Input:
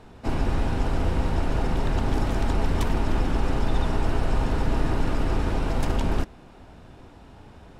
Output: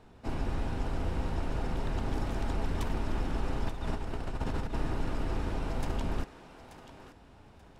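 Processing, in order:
0:03.67–0:04.78: compressor whose output falls as the input rises −23 dBFS, ratio −0.5
feedback echo with a high-pass in the loop 883 ms, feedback 26%, high-pass 530 Hz, level −11 dB
level −8.5 dB

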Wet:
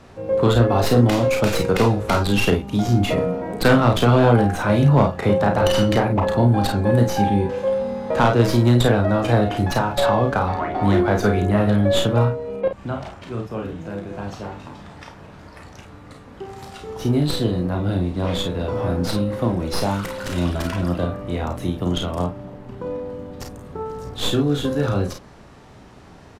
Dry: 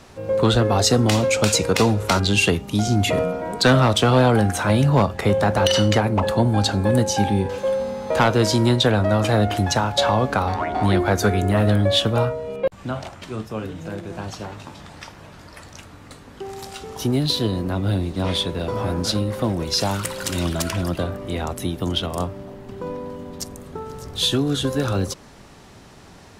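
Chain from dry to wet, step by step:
stylus tracing distortion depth 0.15 ms
high-shelf EQ 3,100 Hz −10 dB
ambience of single reflections 34 ms −6 dB, 50 ms −8 dB
SBC 192 kbit/s 32,000 Hz

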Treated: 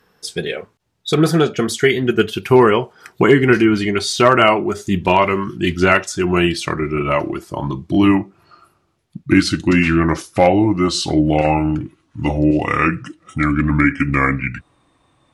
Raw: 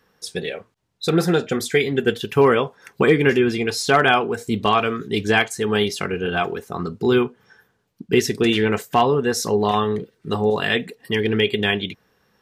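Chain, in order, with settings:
gliding playback speed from 97% → 65%
level +4 dB

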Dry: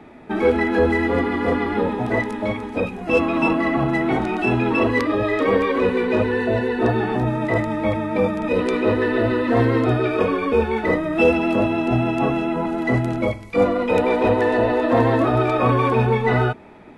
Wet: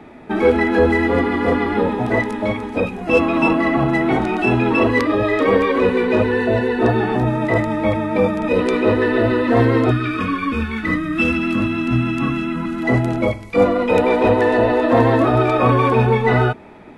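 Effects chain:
gain on a spectral selection 0:09.91–0:12.83, 340–1,000 Hz −16 dB
level +3 dB

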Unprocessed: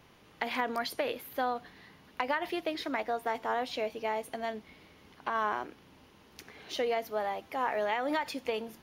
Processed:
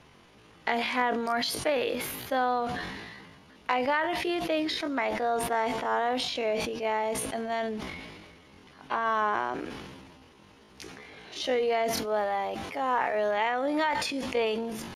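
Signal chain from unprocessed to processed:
low-pass filter 11,000 Hz 24 dB per octave
tempo change 0.59×
level that may fall only so fast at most 32 dB per second
level +3.5 dB

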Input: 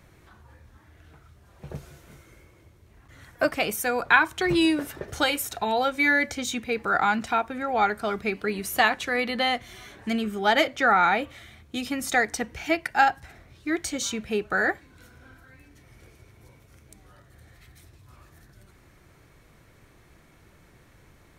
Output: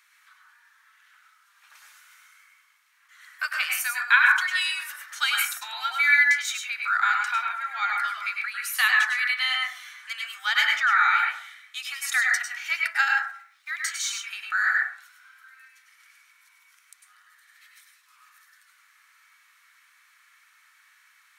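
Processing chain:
0:13.18–0:13.71: mu-law and A-law mismatch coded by A
Butterworth high-pass 1,200 Hz 36 dB per octave
dense smooth reverb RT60 0.51 s, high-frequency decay 0.3×, pre-delay 90 ms, DRR −0.5 dB
level +1 dB

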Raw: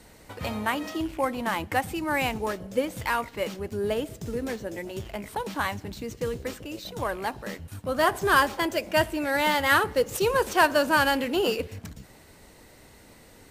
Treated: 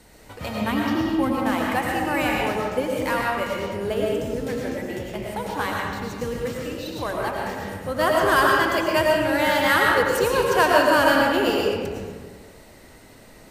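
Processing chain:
0:00.61–0:01.35: octave-band graphic EQ 125/250/500/2,000/4,000/8,000 Hz +8/+8/−4/−4/+4/−5 dB
comb and all-pass reverb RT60 1.7 s, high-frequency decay 0.55×, pre-delay 65 ms, DRR −2.5 dB

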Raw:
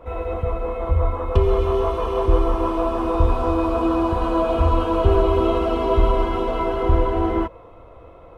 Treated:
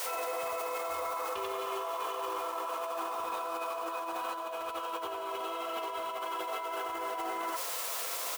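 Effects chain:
single-tap delay 90 ms −3 dB
in parallel at −6 dB: bit-depth reduction 6 bits, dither triangular
on the sum: high-pass filter 990 Hz 12 dB per octave
compressor whose output falls as the input rises −34 dBFS, ratio −1
brickwall limiter −26.5 dBFS, peak gain reduction 10 dB

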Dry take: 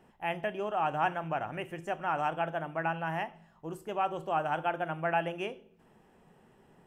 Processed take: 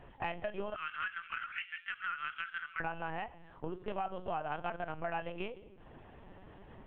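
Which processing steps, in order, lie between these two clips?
0:00.74–0:02.81: Butterworth high-pass 1,300 Hz 48 dB per octave
linear-prediction vocoder at 8 kHz pitch kept
downward compressor 4 to 1, threshold −44 dBFS, peak gain reduction 17 dB
level +7.5 dB

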